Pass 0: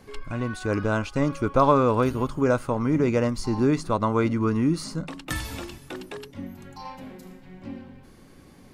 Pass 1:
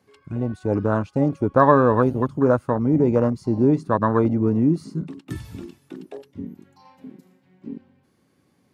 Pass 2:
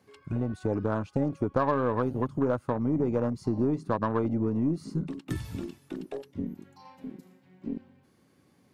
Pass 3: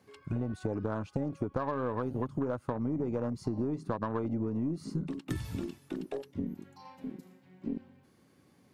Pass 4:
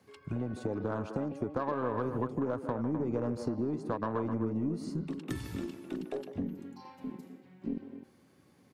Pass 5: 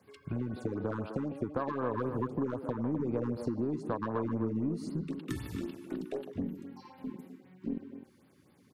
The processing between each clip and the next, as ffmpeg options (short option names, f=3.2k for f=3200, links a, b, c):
-af "highpass=f=86:w=0.5412,highpass=f=86:w=1.3066,afwtdn=0.0501,volume=4dB"
-af "acompressor=threshold=-26dB:ratio=3,aeval=exprs='0.251*(cos(1*acos(clip(val(0)/0.251,-1,1)))-cos(1*PI/2))+0.00631*(cos(8*acos(clip(val(0)/0.251,-1,1)))-cos(8*PI/2))':c=same"
-af "acompressor=threshold=-29dB:ratio=6"
-filter_complex "[0:a]acrossover=split=200|3400[a][b][c];[a]alimiter=level_in=8dB:limit=-24dB:level=0:latency=1:release=492,volume=-8dB[d];[b]aecho=1:1:151.6|256.6:0.316|0.355[e];[d][e][c]amix=inputs=3:normalize=0"
-af "afftfilt=real='re*(1-between(b*sr/1024,570*pow(7500/570,0.5+0.5*sin(2*PI*3.9*pts/sr))/1.41,570*pow(7500/570,0.5+0.5*sin(2*PI*3.9*pts/sr))*1.41))':imag='im*(1-between(b*sr/1024,570*pow(7500/570,0.5+0.5*sin(2*PI*3.9*pts/sr))/1.41,570*pow(7500/570,0.5+0.5*sin(2*PI*3.9*pts/sr))*1.41))':win_size=1024:overlap=0.75"